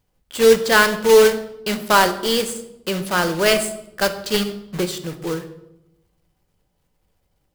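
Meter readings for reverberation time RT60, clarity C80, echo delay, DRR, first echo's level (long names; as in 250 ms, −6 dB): 0.90 s, 14.5 dB, no echo audible, 7.5 dB, no echo audible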